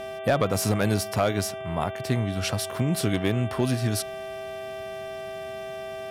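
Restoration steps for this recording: clip repair -13 dBFS; de-hum 390.6 Hz, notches 9; band-stop 650 Hz, Q 30

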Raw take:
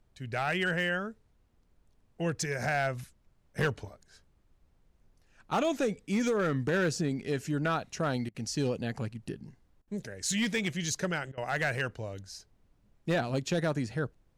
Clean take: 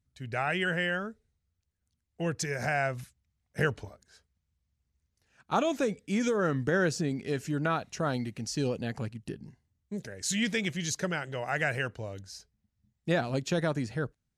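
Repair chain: clip repair -22.5 dBFS; interpolate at 8.29/9.82/11.32 s, 54 ms; expander -58 dBFS, range -21 dB

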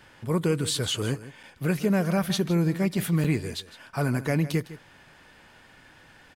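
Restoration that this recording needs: interpolate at 1.43/3.24 s, 5.6 ms; inverse comb 157 ms -15.5 dB

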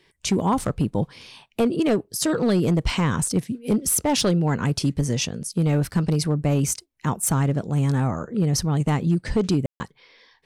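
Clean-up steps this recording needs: clip repair -14 dBFS; room tone fill 9.66–9.80 s

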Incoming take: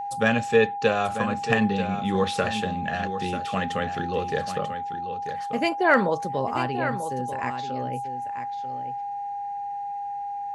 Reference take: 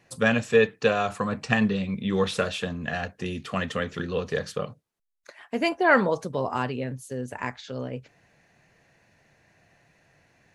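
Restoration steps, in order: clip repair -6.5 dBFS; band-stop 810 Hz, Q 30; inverse comb 940 ms -10 dB

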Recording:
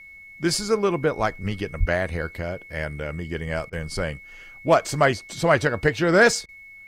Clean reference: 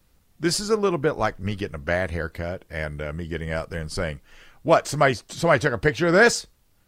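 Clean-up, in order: clip repair -6.5 dBFS; band-stop 2.2 kHz, Q 30; 1.79–1.91 s: high-pass 140 Hz 24 dB/octave; interpolate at 3.70/6.46 s, 25 ms

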